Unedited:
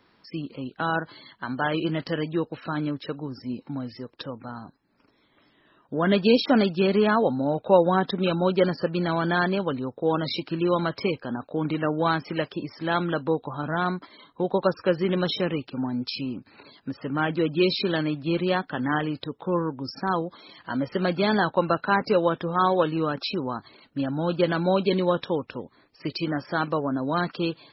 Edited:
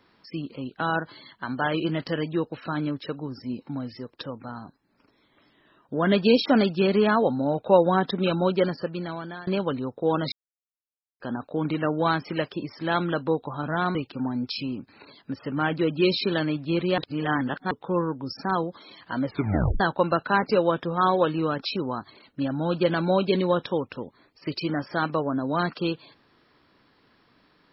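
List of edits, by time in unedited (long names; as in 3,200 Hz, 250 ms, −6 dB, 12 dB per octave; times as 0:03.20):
0:08.42–0:09.47: fade out, to −21.5 dB
0:10.32–0:11.20: silence
0:13.95–0:15.53: remove
0:18.56–0:19.29: reverse
0:20.84: tape stop 0.54 s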